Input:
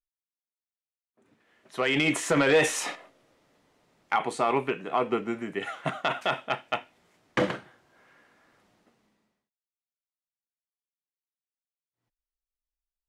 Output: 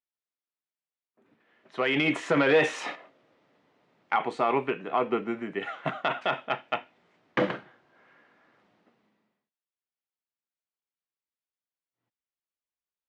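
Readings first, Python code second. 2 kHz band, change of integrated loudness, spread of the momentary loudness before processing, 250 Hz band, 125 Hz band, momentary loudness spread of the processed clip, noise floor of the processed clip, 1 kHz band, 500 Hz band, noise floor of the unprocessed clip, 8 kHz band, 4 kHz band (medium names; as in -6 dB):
-0.5 dB, -0.5 dB, 12 LU, 0.0 dB, -2.0 dB, 12 LU, under -85 dBFS, 0.0 dB, 0.0 dB, under -85 dBFS, under -10 dB, -2.5 dB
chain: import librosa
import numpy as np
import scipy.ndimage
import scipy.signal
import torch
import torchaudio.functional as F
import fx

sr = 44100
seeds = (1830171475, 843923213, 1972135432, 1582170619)

y = fx.bandpass_edges(x, sr, low_hz=130.0, high_hz=3500.0)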